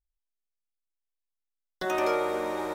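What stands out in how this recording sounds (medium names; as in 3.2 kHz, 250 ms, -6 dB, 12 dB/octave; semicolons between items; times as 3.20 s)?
noise floor -85 dBFS; spectral tilt -2.5 dB/octave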